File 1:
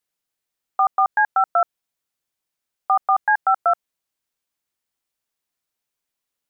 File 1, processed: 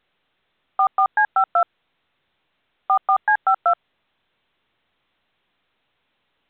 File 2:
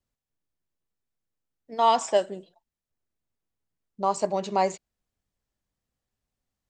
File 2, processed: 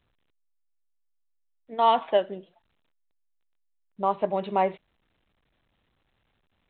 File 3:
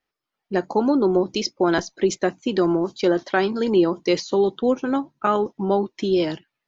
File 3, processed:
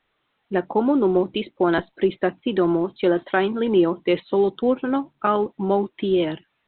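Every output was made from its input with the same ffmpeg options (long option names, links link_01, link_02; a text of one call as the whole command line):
ffmpeg -i in.wav -ar 8000 -c:a pcm_alaw out.wav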